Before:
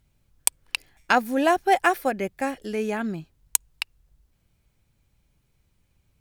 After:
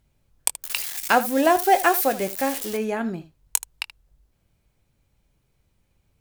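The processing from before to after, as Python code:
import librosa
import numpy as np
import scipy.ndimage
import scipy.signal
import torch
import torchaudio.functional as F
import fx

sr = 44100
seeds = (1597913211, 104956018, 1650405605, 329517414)

y = fx.crossing_spikes(x, sr, level_db=-20.0, at=(0.62, 2.77))
y = fx.peak_eq(y, sr, hz=560.0, db=4.0, octaves=1.8)
y = fx.room_early_taps(y, sr, ms=(22, 78), db=(-12.5, -16.0))
y = y * librosa.db_to_amplitude(-1.0)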